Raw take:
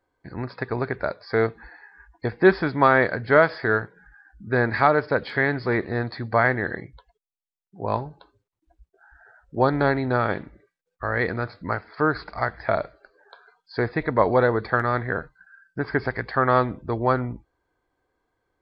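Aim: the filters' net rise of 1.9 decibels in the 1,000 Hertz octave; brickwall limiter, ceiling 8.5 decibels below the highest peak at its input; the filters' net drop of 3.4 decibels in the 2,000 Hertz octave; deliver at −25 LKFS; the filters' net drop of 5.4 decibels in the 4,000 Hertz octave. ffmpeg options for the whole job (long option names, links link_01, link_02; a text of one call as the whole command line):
ffmpeg -i in.wav -af "equalizer=frequency=1000:width_type=o:gain=4.5,equalizer=frequency=2000:width_type=o:gain=-6,equalizer=frequency=4000:width_type=o:gain=-5,volume=0.5dB,alimiter=limit=-10dB:level=0:latency=1" out.wav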